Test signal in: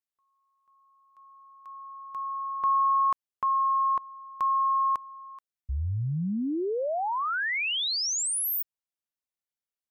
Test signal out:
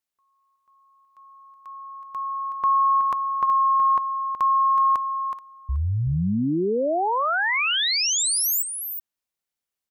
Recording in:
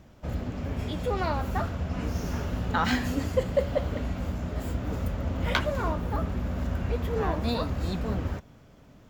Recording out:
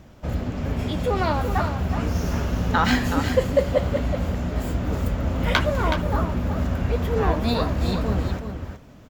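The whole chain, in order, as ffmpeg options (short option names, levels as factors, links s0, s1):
-af "aecho=1:1:372:0.398,volume=1.88"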